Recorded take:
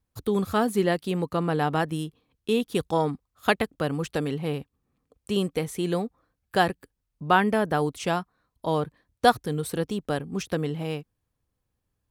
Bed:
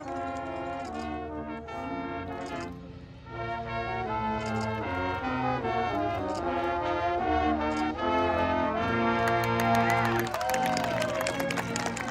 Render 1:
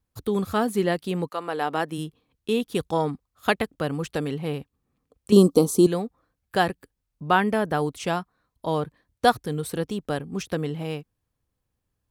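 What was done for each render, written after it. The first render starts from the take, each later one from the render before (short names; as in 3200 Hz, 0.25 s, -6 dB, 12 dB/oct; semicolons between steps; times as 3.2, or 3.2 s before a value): 1.28–1.97 HPF 700 Hz -> 180 Hz; 5.32–5.87 EQ curve 130 Hz 0 dB, 210 Hz +13 dB, 300 Hz +14 dB, 680 Hz +6 dB, 1200 Hz +10 dB, 1800 Hz -21 dB, 4300 Hz +10 dB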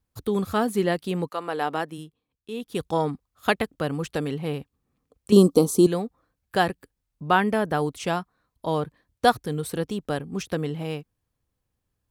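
1.68–2.92 dip -11.5 dB, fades 0.41 s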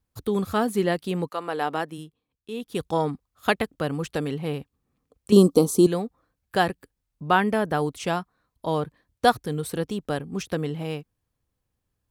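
nothing audible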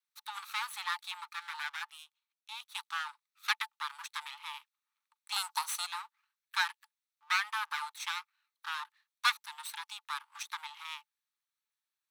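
minimum comb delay 0.49 ms; rippled Chebyshev high-pass 850 Hz, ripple 6 dB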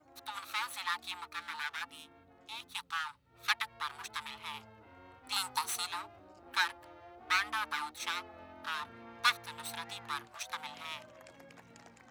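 add bed -25.5 dB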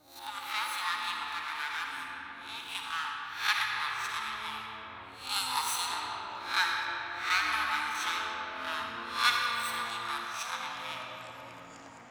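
spectral swells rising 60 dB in 0.42 s; digital reverb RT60 4.5 s, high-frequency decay 0.5×, pre-delay 15 ms, DRR -0.5 dB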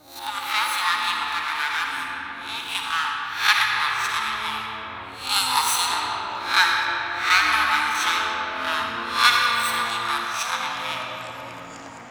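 gain +10.5 dB; limiter -2 dBFS, peak gain reduction 2.5 dB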